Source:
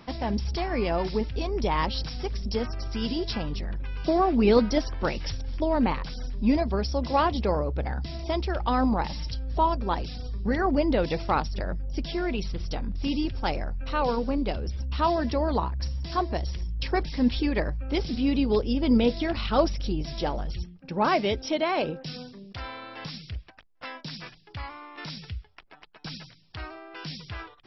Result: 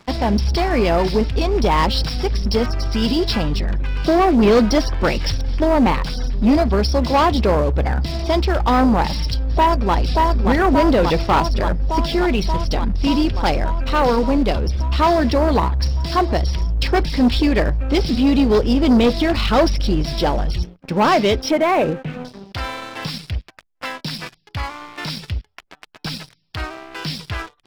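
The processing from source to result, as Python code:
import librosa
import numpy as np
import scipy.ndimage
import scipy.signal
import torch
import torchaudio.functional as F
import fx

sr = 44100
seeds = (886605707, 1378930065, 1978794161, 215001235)

y = fx.echo_throw(x, sr, start_s=9.36, length_s=0.58, ms=580, feedback_pct=75, wet_db=-3.0)
y = fx.steep_lowpass(y, sr, hz=2500.0, slope=36, at=(21.51, 22.25))
y = fx.leveller(y, sr, passes=3)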